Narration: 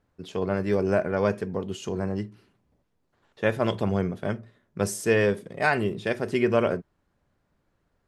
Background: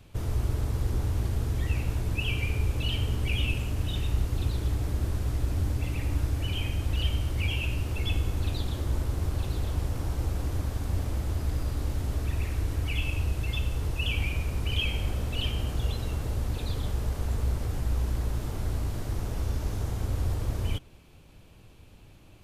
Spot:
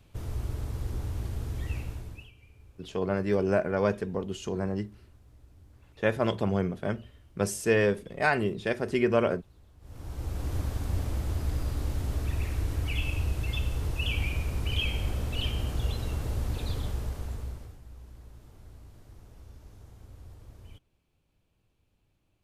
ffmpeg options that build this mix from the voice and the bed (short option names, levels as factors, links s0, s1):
-filter_complex "[0:a]adelay=2600,volume=0.794[s0];[1:a]volume=11.2,afade=t=out:st=1.75:d=0.56:silence=0.0794328,afade=t=in:st=9.8:d=0.77:silence=0.0473151,afade=t=out:st=16.72:d=1.06:silence=0.112202[s1];[s0][s1]amix=inputs=2:normalize=0"